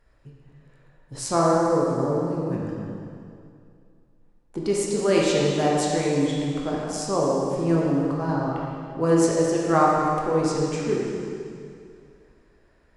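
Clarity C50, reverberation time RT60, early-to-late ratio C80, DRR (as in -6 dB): -2.0 dB, 2.4 s, 0.0 dB, -4.5 dB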